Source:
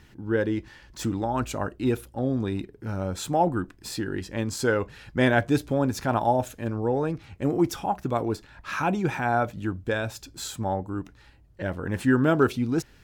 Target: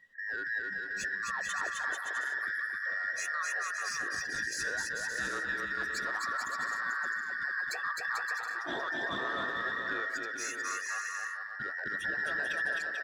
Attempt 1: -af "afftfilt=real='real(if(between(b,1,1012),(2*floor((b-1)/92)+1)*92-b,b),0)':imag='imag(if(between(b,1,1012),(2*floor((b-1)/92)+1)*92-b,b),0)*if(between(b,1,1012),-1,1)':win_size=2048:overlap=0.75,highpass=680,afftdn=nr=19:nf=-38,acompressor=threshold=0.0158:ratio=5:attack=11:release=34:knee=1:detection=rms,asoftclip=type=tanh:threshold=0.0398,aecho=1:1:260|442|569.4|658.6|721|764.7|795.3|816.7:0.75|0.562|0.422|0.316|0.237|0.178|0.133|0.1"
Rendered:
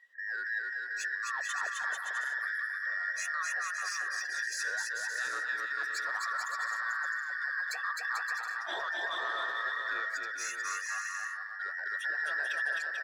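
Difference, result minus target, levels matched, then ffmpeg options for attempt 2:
500 Hz band -5.0 dB
-af "afftfilt=real='real(if(between(b,1,1012),(2*floor((b-1)/92)+1)*92-b,b),0)':imag='imag(if(between(b,1,1012),(2*floor((b-1)/92)+1)*92-b,b),0)*if(between(b,1,1012),-1,1)':win_size=2048:overlap=0.75,afftdn=nr=19:nf=-38,acompressor=threshold=0.0158:ratio=5:attack=11:release=34:knee=1:detection=rms,asoftclip=type=tanh:threshold=0.0398,aecho=1:1:260|442|569.4|658.6|721|764.7|795.3|816.7:0.75|0.562|0.422|0.316|0.237|0.178|0.133|0.1"

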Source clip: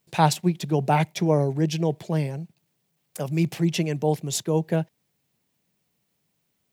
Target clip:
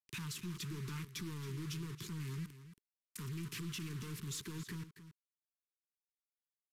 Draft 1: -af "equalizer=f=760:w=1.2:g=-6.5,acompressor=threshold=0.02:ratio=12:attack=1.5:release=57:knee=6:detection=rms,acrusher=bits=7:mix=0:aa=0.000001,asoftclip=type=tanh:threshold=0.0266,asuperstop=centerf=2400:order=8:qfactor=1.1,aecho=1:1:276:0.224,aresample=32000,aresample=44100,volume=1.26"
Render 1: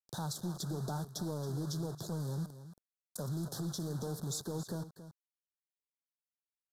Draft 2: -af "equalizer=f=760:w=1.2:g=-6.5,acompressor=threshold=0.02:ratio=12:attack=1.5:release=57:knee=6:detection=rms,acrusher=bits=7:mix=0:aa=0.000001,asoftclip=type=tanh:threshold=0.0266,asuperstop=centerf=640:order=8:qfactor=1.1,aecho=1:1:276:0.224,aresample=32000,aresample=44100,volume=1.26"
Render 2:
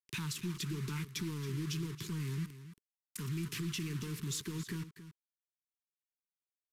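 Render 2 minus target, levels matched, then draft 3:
saturation: distortion -11 dB
-af "equalizer=f=760:w=1.2:g=-6.5,acompressor=threshold=0.02:ratio=12:attack=1.5:release=57:knee=6:detection=rms,acrusher=bits=7:mix=0:aa=0.000001,asoftclip=type=tanh:threshold=0.00841,asuperstop=centerf=640:order=8:qfactor=1.1,aecho=1:1:276:0.224,aresample=32000,aresample=44100,volume=1.26"

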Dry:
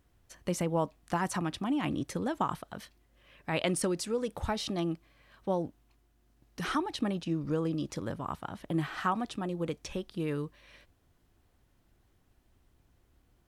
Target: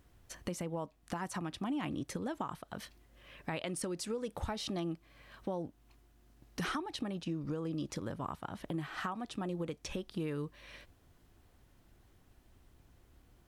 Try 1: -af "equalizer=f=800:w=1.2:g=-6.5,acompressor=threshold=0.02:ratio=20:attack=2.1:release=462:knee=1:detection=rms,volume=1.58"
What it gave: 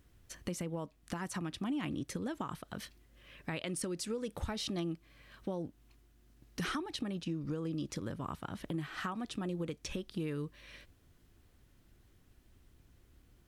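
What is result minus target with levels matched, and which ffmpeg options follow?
1 kHz band -3.0 dB
-af "acompressor=threshold=0.02:ratio=20:attack=2.1:release=462:knee=1:detection=rms,volume=1.58"

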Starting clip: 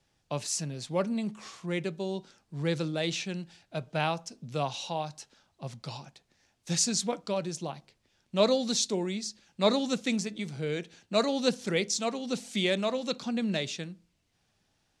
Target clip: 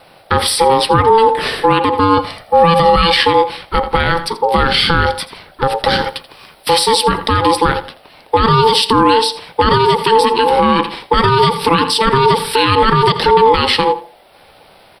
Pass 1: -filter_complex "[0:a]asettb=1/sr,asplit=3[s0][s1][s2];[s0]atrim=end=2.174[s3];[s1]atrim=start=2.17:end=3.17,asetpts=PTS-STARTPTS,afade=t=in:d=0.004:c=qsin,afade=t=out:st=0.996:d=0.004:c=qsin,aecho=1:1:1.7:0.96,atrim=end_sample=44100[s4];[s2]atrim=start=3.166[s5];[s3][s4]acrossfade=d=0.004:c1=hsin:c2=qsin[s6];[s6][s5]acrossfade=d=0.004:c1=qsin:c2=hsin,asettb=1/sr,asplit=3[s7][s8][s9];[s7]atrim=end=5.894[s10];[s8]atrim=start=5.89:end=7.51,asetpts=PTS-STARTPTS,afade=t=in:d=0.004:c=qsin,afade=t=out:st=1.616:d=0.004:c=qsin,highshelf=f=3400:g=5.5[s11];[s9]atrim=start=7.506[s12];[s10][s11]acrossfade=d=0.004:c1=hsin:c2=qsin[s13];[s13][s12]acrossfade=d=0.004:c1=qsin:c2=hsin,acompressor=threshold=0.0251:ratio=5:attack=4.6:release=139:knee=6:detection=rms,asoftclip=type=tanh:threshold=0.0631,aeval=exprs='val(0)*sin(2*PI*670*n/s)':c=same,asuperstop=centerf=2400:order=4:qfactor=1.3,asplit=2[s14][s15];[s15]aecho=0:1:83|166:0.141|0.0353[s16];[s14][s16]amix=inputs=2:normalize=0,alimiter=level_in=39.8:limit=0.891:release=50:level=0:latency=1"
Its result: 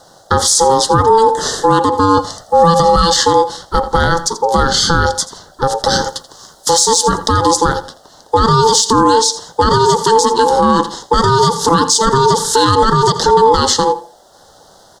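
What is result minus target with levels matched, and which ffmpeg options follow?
saturation: distortion +19 dB; 8 kHz band +11.0 dB
-filter_complex "[0:a]asettb=1/sr,asplit=3[s0][s1][s2];[s0]atrim=end=2.174[s3];[s1]atrim=start=2.17:end=3.17,asetpts=PTS-STARTPTS,afade=t=in:d=0.004:c=qsin,afade=t=out:st=0.996:d=0.004:c=qsin,aecho=1:1:1.7:0.96,atrim=end_sample=44100[s4];[s2]atrim=start=3.166[s5];[s3][s4]acrossfade=d=0.004:c1=hsin:c2=qsin[s6];[s6][s5]acrossfade=d=0.004:c1=qsin:c2=hsin,asettb=1/sr,asplit=3[s7][s8][s9];[s7]atrim=end=5.894[s10];[s8]atrim=start=5.89:end=7.51,asetpts=PTS-STARTPTS,afade=t=in:d=0.004:c=qsin,afade=t=out:st=1.616:d=0.004:c=qsin,highshelf=f=3400:g=5.5[s11];[s9]atrim=start=7.506[s12];[s10][s11]acrossfade=d=0.004:c1=hsin:c2=qsin[s13];[s13][s12]acrossfade=d=0.004:c1=qsin:c2=hsin,acompressor=threshold=0.0251:ratio=5:attack=4.6:release=139:knee=6:detection=rms,asoftclip=type=tanh:threshold=0.2,aeval=exprs='val(0)*sin(2*PI*670*n/s)':c=same,asuperstop=centerf=6700:order=4:qfactor=1.3,asplit=2[s14][s15];[s15]aecho=0:1:83|166:0.141|0.0353[s16];[s14][s16]amix=inputs=2:normalize=0,alimiter=level_in=39.8:limit=0.891:release=50:level=0:latency=1"

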